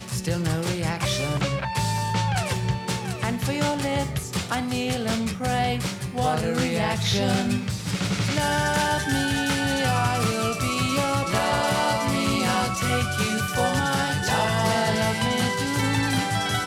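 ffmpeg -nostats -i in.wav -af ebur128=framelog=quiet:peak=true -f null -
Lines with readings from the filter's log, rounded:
Integrated loudness:
  I:         -24.0 LUFS
  Threshold: -34.0 LUFS
Loudness range:
  LRA:         2.9 LU
  Threshold: -44.0 LUFS
  LRA low:   -25.9 LUFS
  LRA high:  -23.0 LUFS
True peak:
  Peak:       -9.6 dBFS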